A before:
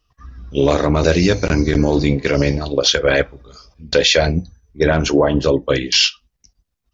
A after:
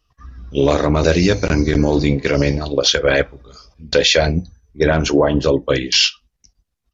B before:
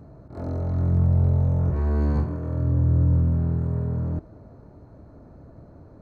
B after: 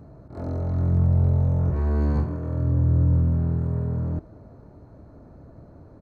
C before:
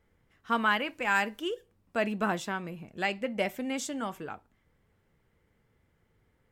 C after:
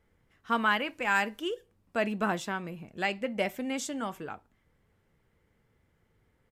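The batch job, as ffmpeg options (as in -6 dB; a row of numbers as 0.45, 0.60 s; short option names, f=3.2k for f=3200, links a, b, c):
-af "aresample=32000,aresample=44100"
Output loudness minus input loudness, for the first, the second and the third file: 0.0, 0.0, 0.0 LU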